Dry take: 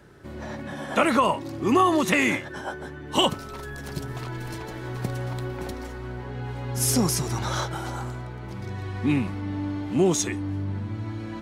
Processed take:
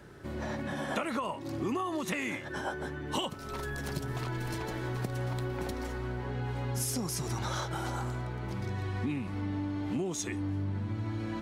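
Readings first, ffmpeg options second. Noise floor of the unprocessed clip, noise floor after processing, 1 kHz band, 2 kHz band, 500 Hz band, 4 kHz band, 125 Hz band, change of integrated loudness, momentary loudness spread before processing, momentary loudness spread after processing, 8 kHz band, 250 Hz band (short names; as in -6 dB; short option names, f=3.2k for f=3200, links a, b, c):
-38 dBFS, -41 dBFS, -10.0 dB, -8.0 dB, -9.5 dB, -10.5 dB, -4.5 dB, -8.5 dB, 15 LU, 4 LU, -9.5 dB, -8.5 dB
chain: -af "acompressor=threshold=-30dB:ratio=10"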